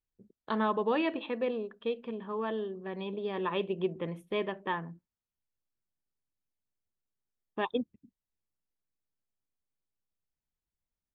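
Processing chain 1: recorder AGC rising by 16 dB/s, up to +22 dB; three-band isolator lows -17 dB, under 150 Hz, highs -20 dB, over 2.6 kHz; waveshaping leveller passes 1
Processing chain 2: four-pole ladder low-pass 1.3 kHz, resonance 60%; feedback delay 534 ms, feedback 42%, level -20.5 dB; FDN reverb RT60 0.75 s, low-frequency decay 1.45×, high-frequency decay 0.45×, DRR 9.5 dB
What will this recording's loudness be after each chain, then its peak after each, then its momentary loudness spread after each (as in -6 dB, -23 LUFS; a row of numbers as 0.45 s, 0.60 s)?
-30.0 LUFS, -40.5 LUFS; -14.0 dBFS, -22.5 dBFS; 7 LU, 17 LU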